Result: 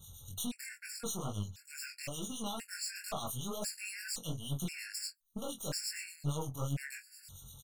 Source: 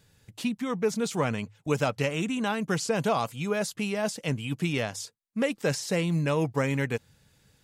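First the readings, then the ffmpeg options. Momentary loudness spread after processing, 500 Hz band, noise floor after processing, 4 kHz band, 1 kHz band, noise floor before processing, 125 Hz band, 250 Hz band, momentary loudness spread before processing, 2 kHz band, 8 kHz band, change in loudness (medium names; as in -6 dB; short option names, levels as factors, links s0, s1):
7 LU, -18.0 dB, -63 dBFS, -5.0 dB, -13.5 dB, -65 dBFS, -9.5 dB, -14.0 dB, 6 LU, -12.5 dB, -2.0 dB, -11.0 dB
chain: -filter_complex "[0:a]lowshelf=f=170:g=7.5,bandreject=f=5600:w=21,deesser=0.65,equalizer=f=340:w=0.5:g=-11,aexciter=amount=3.2:drive=5.8:freq=4000,acompressor=threshold=0.01:ratio=5,asplit=2[s0][s1];[s1]aecho=0:1:21|43:0.596|0.158[s2];[s0][s2]amix=inputs=2:normalize=0,aeval=exprs='0.0596*(cos(1*acos(clip(val(0)/0.0596,-1,1)))-cos(1*PI/2))+0.00596*(cos(8*acos(clip(val(0)/0.0596,-1,1)))-cos(8*PI/2))':c=same,asoftclip=type=tanh:threshold=0.0188,acrossover=split=2500[s3][s4];[s3]aeval=exprs='val(0)*(1-0.7/2+0.7/2*cos(2*PI*8.6*n/s))':c=same[s5];[s4]aeval=exprs='val(0)*(1-0.7/2-0.7/2*cos(2*PI*8.6*n/s))':c=same[s6];[s5][s6]amix=inputs=2:normalize=0,flanger=delay=19.5:depth=5.2:speed=2.2,afftfilt=real='re*gt(sin(2*PI*0.96*pts/sr)*(1-2*mod(floor(b*sr/1024/1400),2)),0)':imag='im*gt(sin(2*PI*0.96*pts/sr)*(1-2*mod(floor(b*sr/1024/1400),2)),0)':win_size=1024:overlap=0.75,volume=3.76"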